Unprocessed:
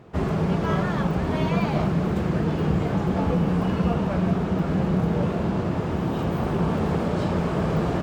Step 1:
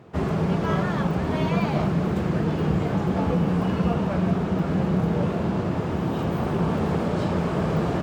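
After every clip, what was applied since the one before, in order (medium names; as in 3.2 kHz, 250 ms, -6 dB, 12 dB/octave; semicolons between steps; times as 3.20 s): high-pass 62 Hz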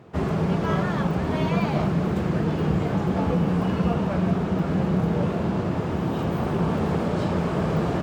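no audible change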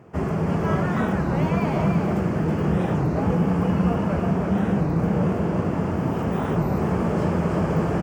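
peaking EQ 3.8 kHz -14.5 dB 0.41 oct; delay 324 ms -4 dB; warped record 33 1/3 rpm, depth 250 cents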